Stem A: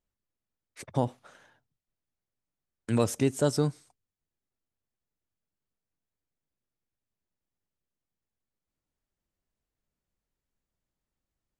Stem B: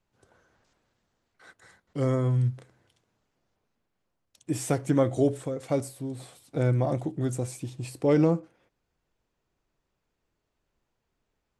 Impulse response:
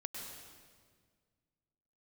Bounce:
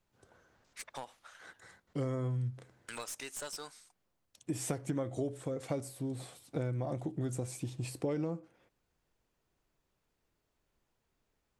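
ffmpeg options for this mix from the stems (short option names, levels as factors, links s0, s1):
-filter_complex "[0:a]highpass=1100,acompressor=threshold=0.0112:ratio=6,aeval=exprs='clip(val(0),-1,0.00891)':c=same,volume=1.19[s0];[1:a]volume=0.841[s1];[s0][s1]amix=inputs=2:normalize=0,acompressor=threshold=0.0251:ratio=6"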